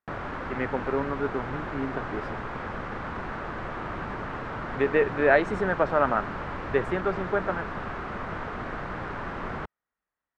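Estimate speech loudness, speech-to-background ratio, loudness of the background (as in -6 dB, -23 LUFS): -27.0 LUFS, 7.5 dB, -34.5 LUFS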